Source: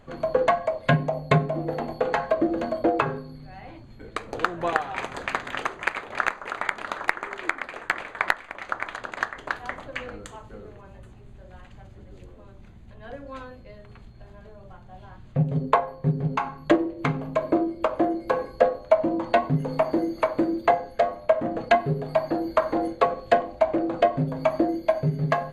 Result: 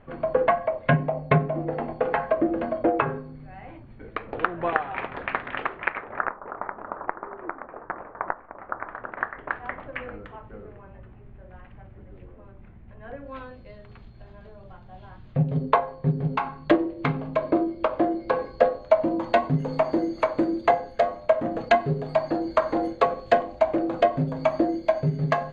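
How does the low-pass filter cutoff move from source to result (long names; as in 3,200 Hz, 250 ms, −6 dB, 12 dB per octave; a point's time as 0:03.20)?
low-pass filter 24 dB per octave
0:05.82 2,800 Hz
0:06.40 1,200 Hz
0:08.54 1,200 Hz
0:09.69 2,500 Hz
0:13.11 2,500 Hz
0:13.61 4,700 Hz
0:18.24 4,700 Hz
0:19.39 7,500 Hz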